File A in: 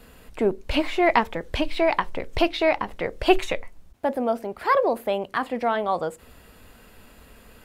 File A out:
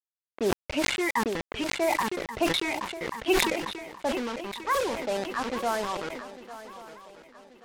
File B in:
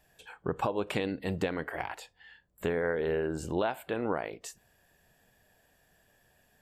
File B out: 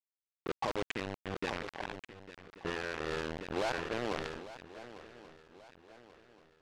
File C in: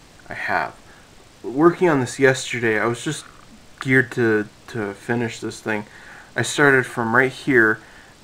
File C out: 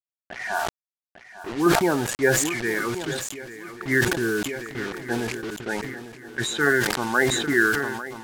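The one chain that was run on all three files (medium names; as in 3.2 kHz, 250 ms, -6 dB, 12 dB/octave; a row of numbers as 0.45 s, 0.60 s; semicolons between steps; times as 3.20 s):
high-pass 150 Hz 6 dB/octave; treble shelf 4.5 kHz +3.5 dB; LFO notch square 0.6 Hz 650–4000 Hz; loudest bins only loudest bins 32; bit crusher 5-bit; level-controlled noise filter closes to 2.2 kHz, open at -17.5 dBFS; shuffle delay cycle 1134 ms, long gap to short 3:1, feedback 40%, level -15 dB; decay stretcher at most 39 dB/s; trim -5 dB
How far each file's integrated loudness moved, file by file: -4.5 LU, -5.5 LU, -4.0 LU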